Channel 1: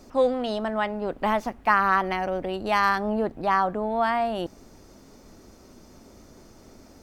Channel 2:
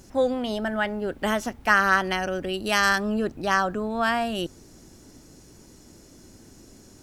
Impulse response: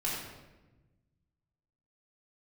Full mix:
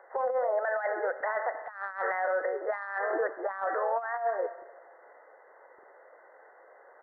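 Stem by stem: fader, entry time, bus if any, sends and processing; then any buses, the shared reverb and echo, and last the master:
-7.5 dB, 0.00 s, no send, formants replaced by sine waves; gate with hold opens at -48 dBFS
+2.0 dB, 1 ms, polarity flipped, send -18 dB, Chebyshev high-pass 500 Hz, order 5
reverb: on, RT60 1.1 s, pre-delay 3 ms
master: brick-wall FIR low-pass 2.1 kHz; compressor with a negative ratio -27 dBFS, ratio -0.5; peak limiter -21 dBFS, peak gain reduction 7.5 dB

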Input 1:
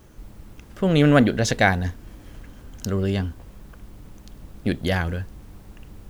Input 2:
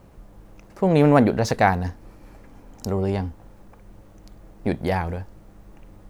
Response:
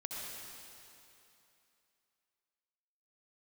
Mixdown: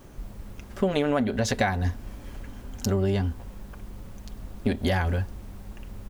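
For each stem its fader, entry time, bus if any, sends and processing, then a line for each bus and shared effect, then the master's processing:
+0.5 dB, 0.00 s, no send, none
-1.5 dB, 6.7 ms, polarity flipped, no send, none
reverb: none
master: compression 12:1, threshold -20 dBFS, peak gain reduction 13.5 dB

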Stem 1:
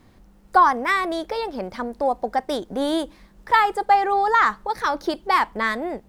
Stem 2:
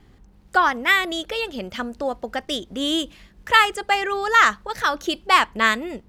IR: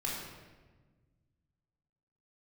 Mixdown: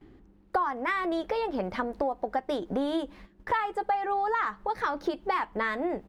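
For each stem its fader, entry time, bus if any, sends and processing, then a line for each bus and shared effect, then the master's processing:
+2.5 dB, 0.00 s, no send, gate -45 dBFS, range -18 dB
-3.0 dB, 11 ms, no send, peaking EQ 320 Hz +14 dB 0.69 oct; auto duck -9 dB, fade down 0.55 s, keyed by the first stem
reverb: none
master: tone controls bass -1 dB, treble -11 dB; compression 6:1, threshold -26 dBFS, peak gain reduction 17 dB

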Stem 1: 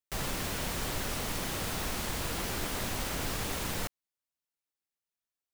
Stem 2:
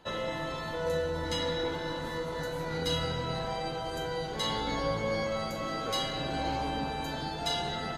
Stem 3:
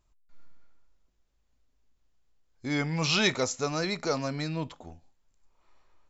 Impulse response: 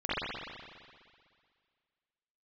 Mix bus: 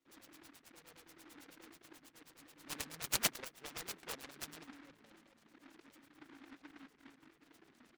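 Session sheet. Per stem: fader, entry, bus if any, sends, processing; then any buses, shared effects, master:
-14.0 dB, 0.00 s, no send, none
-2.0 dB, 0.00 s, no send, FFT filter 200 Hz 0 dB, 290 Hz +14 dB, 510 Hz -10 dB, 980 Hz -23 dB, 1.5 kHz -15 dB, 3.7 kHz -28 dB; reverb removal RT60 0.96 s; band-stop 1.1 kHz
-0.5 dB, 0.00 s, no send, none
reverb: none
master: differentiator; LFO low-pass sine 9.3 Hz 230–3500 Hz; delay time shaken by noise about 1.4 kHz, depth 0.31 ms

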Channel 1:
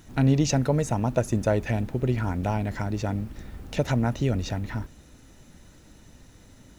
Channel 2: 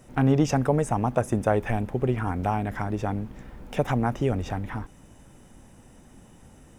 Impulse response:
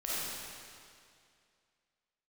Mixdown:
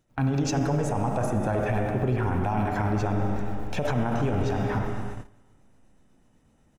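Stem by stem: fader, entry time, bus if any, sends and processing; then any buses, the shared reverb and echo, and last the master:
-2.0 dB, 0.00 s, no send, tremolo of two beating tones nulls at 8 Hz
-3.5 dB, 1.6 ms, send -3.5 dB, treble shelf 7 kHz -8.5 dB; gain riding within 4 dB 2 s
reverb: on, RT60 2.3 s, pre-delay 10 ms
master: gate -32 dBFS, range -18 dB; peak limiter -17 dBFS, peak gain reduction 10 dB

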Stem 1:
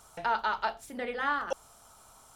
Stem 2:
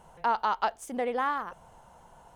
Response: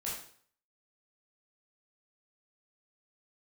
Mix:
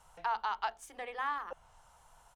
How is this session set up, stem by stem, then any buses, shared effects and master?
-11.5 dB, 0.00 s, no send, low-pass that closes with the level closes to 930 Hz, closed at -28 dBFS; high-pass 220 Hz 6 dB/octave
+2.5 dB, 2.3 ms, polarity flipped, no send, amplifier tone stack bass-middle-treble 10-0-10; treble shelf 4.1 kHz -11 dB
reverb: none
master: none

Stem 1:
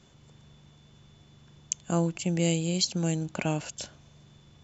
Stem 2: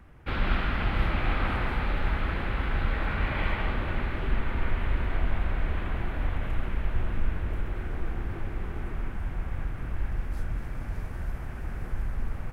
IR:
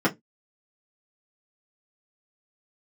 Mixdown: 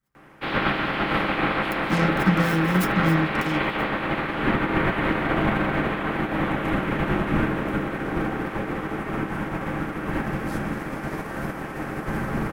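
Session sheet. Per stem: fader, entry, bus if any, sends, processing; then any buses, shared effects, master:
3.09 s -2.5 dB -> 3.68 s -11.5 dB, 0.00 s, send -7 dB, expander on every frequency bin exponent 2; peak limiter -22 dBFS, peak gain reduction 10.5 dB; delay time shaken by noise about 1.5 kHz, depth 0.36 ms
-2.5 dB, 0.15 s, send -17.5 dB, spectral peaks clipped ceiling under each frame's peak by 23 dB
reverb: on, RT60 0.15 s, pre-delay 3 ms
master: none

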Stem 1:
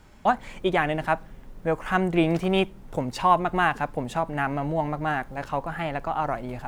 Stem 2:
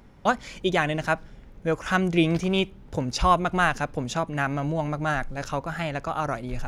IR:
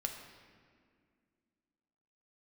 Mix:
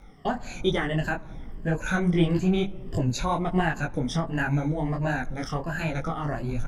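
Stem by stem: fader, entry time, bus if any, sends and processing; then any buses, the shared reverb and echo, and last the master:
-6.0 dB, 0.00 s, send -10 dB, tilt EQ -3 dB/octave; gate with hold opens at -26 dBFS
+1.5 dB, 0.6 ms, no send, drifting ripple filter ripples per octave 1.4, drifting -1.5 Hz, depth 19 dB; compression, threshold -25 dBFS, peak gain reduction 13.5 dB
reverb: on, RT60 2.1 s, pre-delay 6 ms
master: detune thickener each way 47 cents

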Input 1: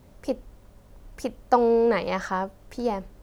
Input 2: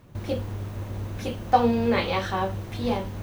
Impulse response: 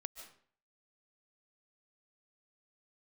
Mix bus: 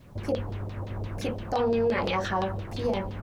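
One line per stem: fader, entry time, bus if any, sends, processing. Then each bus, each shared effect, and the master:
-2.5 dB, 0.00 s, no send, peaking EQ 1.1 kHz -12 dB 0.93 oct
-3.0 dB, 5.1 ms, polarity flipped, send -14.5 dB, LFO low-pass saw down 5.8 Hz 480–4800 Hz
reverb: on, RT60 0.50 s, pre-delay 105 ms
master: peak limiter -18 dBFS, peak gain reduction 10 dB

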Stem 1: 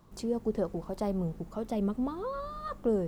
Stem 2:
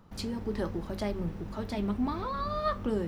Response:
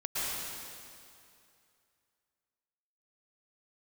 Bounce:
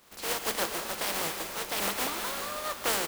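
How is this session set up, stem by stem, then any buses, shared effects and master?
0.0 dB, 0.00 s, send -9.5 dB, spectral contrast reduction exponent 0.24
-8.0 dB, 1.4 ms, no send, none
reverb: on, RT60 2.5 s, pre-delay 103 ms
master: tone controls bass -11 dB, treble -4 dB

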